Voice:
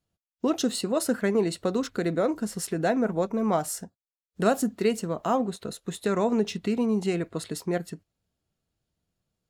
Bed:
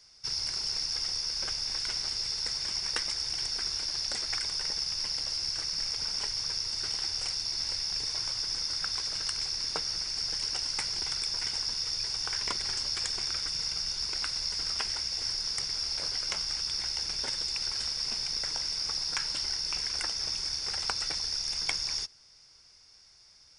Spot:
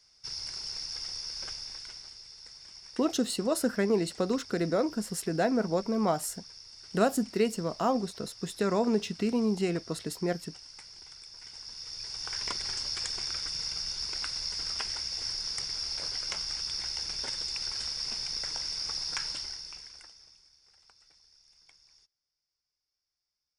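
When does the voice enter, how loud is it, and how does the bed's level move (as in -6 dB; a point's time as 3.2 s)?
2.55 s, -2.5 dB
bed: 1.49 s -5.5 dB
2.24 s -16.5 dB
11.32 s -16.5 dB
12.42 s -2 dB
19.28 s -2 dB
20.52 s -29.5 dB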